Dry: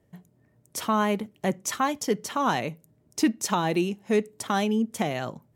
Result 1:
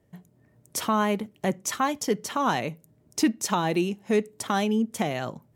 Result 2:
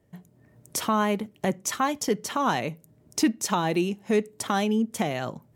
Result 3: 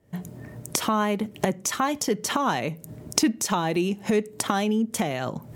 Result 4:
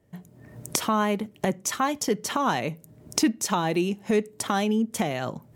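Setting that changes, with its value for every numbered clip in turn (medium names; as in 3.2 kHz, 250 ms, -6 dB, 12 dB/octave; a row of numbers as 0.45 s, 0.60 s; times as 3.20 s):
recorder AGC, rising by: 5.5 dB/s, 13 dB/s, 84 dB/s, 34 dB/s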